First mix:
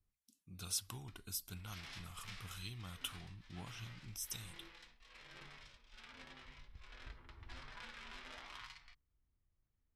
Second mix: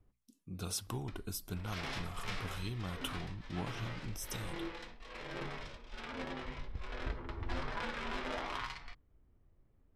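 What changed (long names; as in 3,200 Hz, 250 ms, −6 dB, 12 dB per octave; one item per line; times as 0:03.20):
speech −6.5 dB
master: remove guitar amp tone stack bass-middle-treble 5-5-5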